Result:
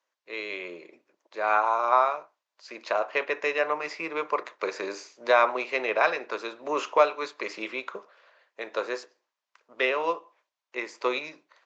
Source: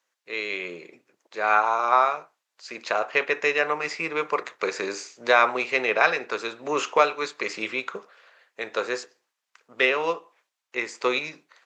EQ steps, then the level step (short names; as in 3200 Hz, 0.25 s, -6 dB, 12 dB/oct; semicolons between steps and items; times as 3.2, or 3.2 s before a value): speaker cabinet 190–6600 Hz, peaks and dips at 330 Hz +4 dB, 600 Hz +7 dB, 1000 Hz +6 dB; -5.5 dB